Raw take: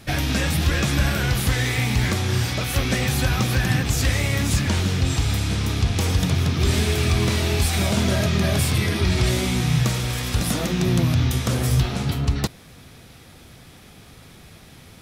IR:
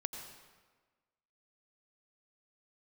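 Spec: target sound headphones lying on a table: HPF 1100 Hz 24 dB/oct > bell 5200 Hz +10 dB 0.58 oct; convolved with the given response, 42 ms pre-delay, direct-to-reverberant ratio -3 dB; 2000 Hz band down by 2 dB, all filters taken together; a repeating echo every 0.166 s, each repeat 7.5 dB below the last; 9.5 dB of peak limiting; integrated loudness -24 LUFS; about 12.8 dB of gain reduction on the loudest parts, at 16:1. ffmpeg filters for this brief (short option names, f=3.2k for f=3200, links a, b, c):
-filter_complex "[0:a]equalizer=f=2k:t=o:g=-3,acompressor=threshold=-28dB:ratio=16,alimiter=level_in=3.5dB:limit=-24dB:level=0:latency=1,volume=-3.5dB,aecho=1:1:166|332|498|664|830:0.422|0.177|0.0744|0.0312|0.0131,asplit=2[a][b];[1:a]atrim=start_sample=2205,adelay=42[c];[b][c]afir=irnorm=-1:irlink=0,volume=3dB[d];[a][d]amix=inputs=2:normalize=0,highpass=f=1.1k:w=0.5412,highpass=f=1.1k:w=1.3066,equalizer=f=5.2k:t=o:w=0.58:g=10,volume=9.5dB"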